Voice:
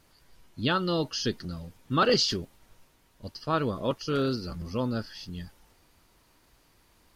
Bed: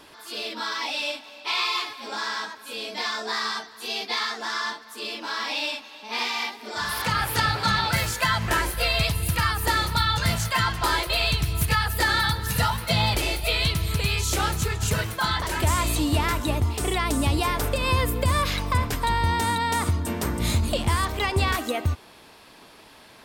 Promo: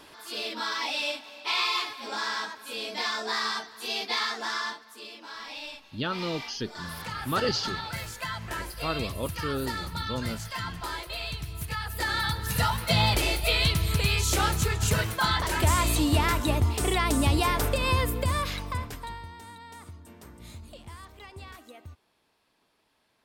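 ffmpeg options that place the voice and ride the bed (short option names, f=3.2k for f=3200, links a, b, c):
-filter_complex "[0:a]adelay=5350,volume=-4.5dB[a];[1:a]volume=9.5dB,afade=t=out:st=4.45:d=0.64:silence=0.316228,afade=t=in:st=11.71:d=1.29:silence=0.281838,afade=t=out:st=17.58:d=1.71:silence=0.0891251[b];[a][b]amix=inputs=2:normalize=0"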